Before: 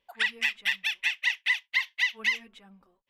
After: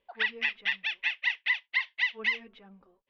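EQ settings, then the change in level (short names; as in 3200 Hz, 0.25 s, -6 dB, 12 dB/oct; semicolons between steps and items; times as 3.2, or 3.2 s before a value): LPF 5500 Hz 24 dB/oct; air absorption 170 m; bell 440 Hz +6 dB 0.94 oct; 0.0 dB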